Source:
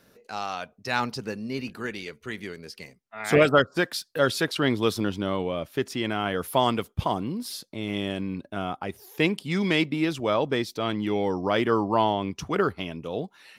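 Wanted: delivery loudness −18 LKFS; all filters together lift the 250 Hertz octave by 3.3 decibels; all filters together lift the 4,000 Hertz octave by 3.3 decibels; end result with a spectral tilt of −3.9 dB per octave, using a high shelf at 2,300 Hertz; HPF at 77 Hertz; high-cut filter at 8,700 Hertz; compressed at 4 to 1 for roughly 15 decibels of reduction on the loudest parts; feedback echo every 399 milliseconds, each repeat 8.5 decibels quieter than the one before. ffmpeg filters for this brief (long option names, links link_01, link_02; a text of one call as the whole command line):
ffmpeg -i in.wav -af "highpass=77,lowpass=8700,equalizer=frequency=250:width_type=o:gain=4.5,highshelf=frequency=2300:gain=-5,equalizer=frequency=4000:width_type=o:gain=9,acompressor=threshold=-31dB:ratio=4,aecho=1:1:399|798|1197|1596:0.376|0.143|0.0543|0.0206,volume=16dB" out.wav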